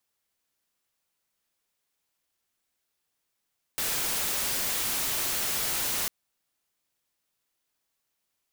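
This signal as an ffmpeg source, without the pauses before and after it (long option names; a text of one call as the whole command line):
ffmpeg -f lavfi -i "anoisesrc=color=white:amplitude=0.0614:duration=2.3:sample_rate=44100:seed=1" out.wav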